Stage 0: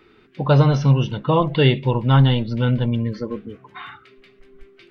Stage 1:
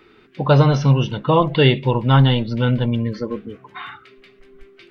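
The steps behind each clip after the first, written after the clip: low shelf 210 Hz -3.5 dB; gain +3 dB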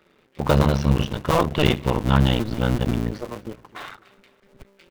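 cycle switcher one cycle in 2, muted; sample leveller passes 1; feedback echo 0.256 s, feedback 46%, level -23 dB; gain -4 dB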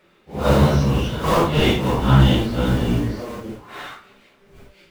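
phase scrambler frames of 0.2 s; gain +3 dB

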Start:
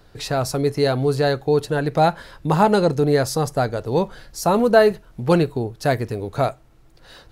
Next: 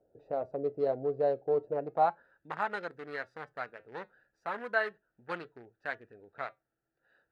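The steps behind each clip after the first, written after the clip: Wiener smoothing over 41 samples; flange 0.36 Hz, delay 3.2 ms, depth 2 ms, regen -84%; band-pass sweep 580 Hz -> 1700 Hz, 1.78–2.38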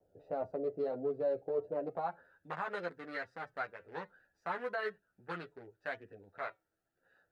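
limiter -26 dBFS, peak gain reduction 10 dB; chorus voices 4, 0.55 Hz, delay 11 ms, depth 1.1 ms; vibrato 0.69 Hz 18 cents; gain +2.5 dB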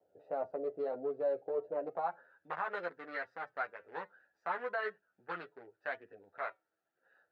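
band-pass 1100 Hz, Q 0.51; gain +2 dB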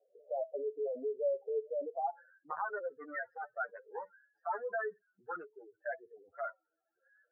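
spectral contrast raised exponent 3.3; gain +1 dB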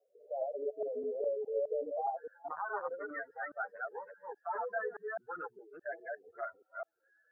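reverse delay 0.207 s, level -1 dB; gain -2 dB

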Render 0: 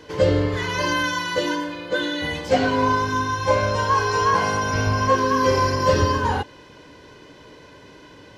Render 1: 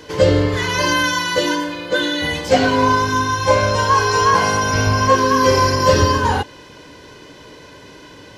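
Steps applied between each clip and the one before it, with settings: high shelf 4500 Hz +6.5 dB; gain +4.5 dB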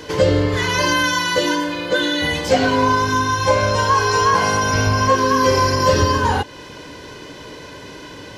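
compressor 1.5:1, threshold -27 dBFS, peak gain reduction 7 dB; gain +4.5 dB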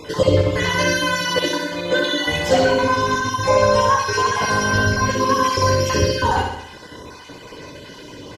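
random spectral dropouts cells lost 35%; on a send: feedback echo 63 ms, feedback 56%, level -5 dB; on the sum: gain -1 dB

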